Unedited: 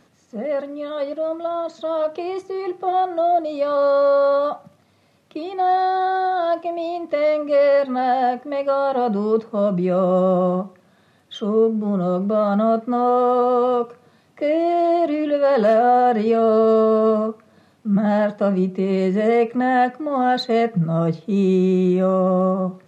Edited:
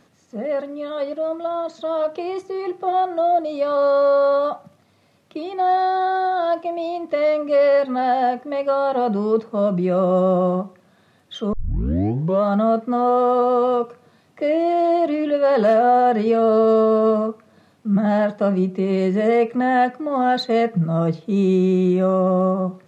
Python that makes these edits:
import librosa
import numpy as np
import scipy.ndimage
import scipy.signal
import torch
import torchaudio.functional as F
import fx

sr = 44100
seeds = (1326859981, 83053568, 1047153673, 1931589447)

y = fx.edit(x, sr, fx.tape_start(start_s=11.53, length_s=0.91), tone=tone)